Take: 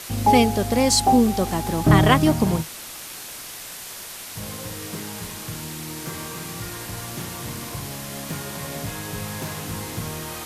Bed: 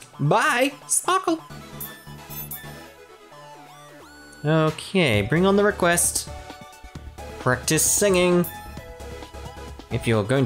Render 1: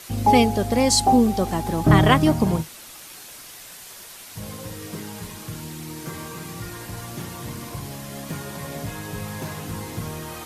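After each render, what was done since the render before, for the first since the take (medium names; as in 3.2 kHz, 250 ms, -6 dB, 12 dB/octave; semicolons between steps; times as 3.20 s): noise reduction 6 dB, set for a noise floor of -37 dBFS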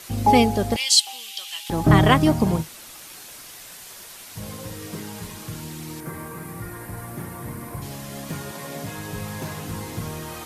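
0.76–1.70 s: resonant high-pass 3 kHz, resonance Q 4.8; 6.00–7.82 s: high-order bell 4.4 kHz -11 dB; 8.51–8.96 s: high-pass 250 Hz -> 96 Hz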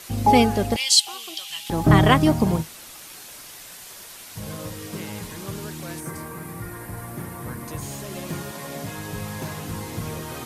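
add bed -21 dB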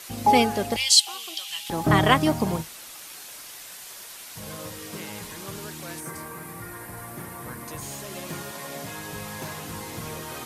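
bass shelf 360 Hz -7.5 dB; hum notches 50/100 Hz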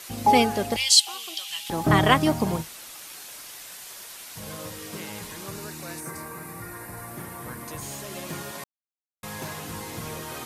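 5.47–7.11 s: band-stop 3.2 kHz, Q 6.5; 8.64–9.23 s: mute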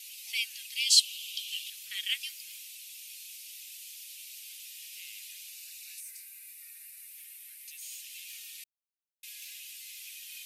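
elliptic high-pass 2.5 kHz, stop band 60 dB; peaking EQ 6.8 kHz -5.5 dB 2 oct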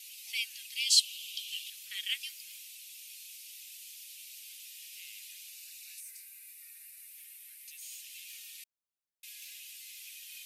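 trim -2.5 dB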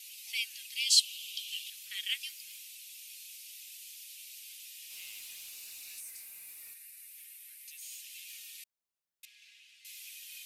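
4.90–6.74 s: jump at every zero crossing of -53.5 dBFS; 9.25–9.85 s: tape spacing loss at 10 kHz 22 dB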